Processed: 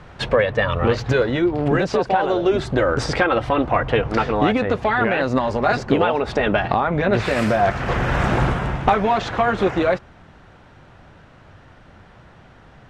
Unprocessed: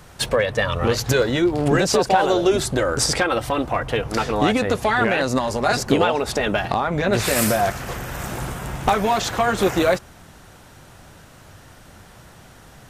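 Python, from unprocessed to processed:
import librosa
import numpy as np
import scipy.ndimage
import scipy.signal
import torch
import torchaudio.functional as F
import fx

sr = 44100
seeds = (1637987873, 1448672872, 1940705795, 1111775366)

y = scipy.signal.sosfilt(scipy.signal.butter(2, 2800.0, 'lowpass', fs=sr, output='sos'), x)
y = fx.rider(y, sr, range_db=10, speed_s=0.5)
y = y * librosa.db_to_amplitude(1.5)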